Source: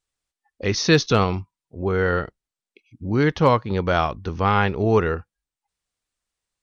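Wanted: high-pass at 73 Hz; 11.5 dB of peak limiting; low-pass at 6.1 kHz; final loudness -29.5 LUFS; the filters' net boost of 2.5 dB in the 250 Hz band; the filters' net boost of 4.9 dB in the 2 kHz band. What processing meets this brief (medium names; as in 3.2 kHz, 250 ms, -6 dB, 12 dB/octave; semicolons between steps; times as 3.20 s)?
high-pass 73 Hz; low-pass 6.1 kHz; peaking EQ 250 Hz +3.5 dB; peaking EQ 2 kHz +6.5 dB; trim -4.5 dB; peak limiter -17.5 dBFS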